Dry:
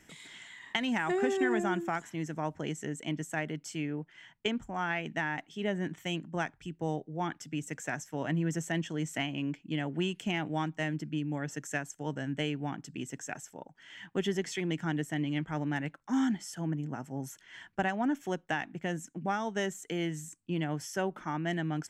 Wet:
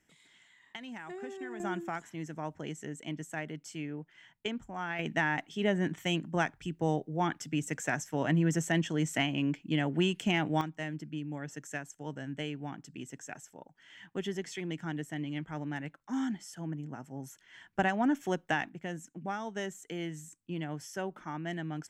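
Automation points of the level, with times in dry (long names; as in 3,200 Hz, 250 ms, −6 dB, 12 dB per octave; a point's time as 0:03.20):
−13 dB
from 0:01.60 −4 dB
from 0:04.99 +3.5 dB
from 0:10.61 −4.5 dB
from 0:17.75 +2 dB
from 0:18.69 −4.5 dB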